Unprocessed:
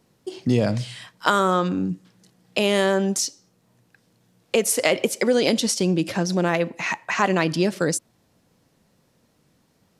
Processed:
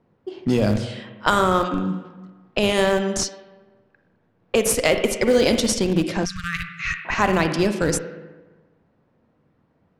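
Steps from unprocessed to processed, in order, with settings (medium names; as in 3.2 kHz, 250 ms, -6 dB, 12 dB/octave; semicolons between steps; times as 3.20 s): hum notches 60/120/180 Hz; spring tank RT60 1.3 s, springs 38/48/58 ms, chirp 55 ms, DRR 6.5 dB; in parallel at -7.5 dB: Schmitt trigger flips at -16 dBFS; on the sum: level-controlled noise filter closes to 1.6 kHz, open at -16 dBFS; 6.25–7.05 s: brick-wall FIR band-stop 170–1100 Hz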